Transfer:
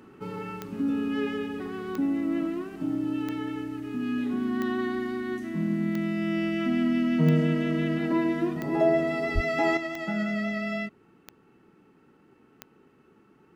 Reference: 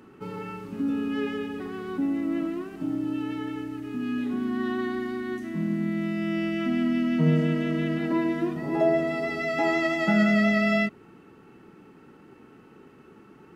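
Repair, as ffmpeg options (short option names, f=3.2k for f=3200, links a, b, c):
-filter_complex "[0:a]adeclick=t=4,asplit=3[a][b][c];[a]afade=t=out:st=9.34:d=0.02[d];[b]highpass=f=140:w=0.5412,highpass=f=140:w=1.3066,afade=t=in:st=9.34:d=0.02,afade=t=out:st=9.46:d=0.02[e];[c]afade=t=in:st=9.46:d=0.02[f];[d][e][f]amix=inputs=3:normalize=0,asetnsamples=n=441:p=0,asendcmd='9.77 volume volume 8dB',volume=0dB"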